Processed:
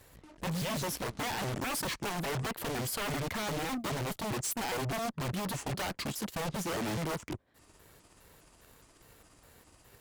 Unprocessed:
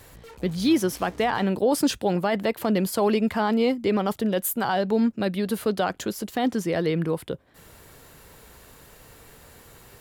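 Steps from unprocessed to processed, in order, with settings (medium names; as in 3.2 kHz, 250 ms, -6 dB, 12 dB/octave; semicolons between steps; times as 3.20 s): pitch shift switched off and on -7 st, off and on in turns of 205 ms; wavefolder -25 dBFS; Chebyshev shaper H 5 -11 dB, 7 -11 dB, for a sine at -25 dBFS; trim -4 dB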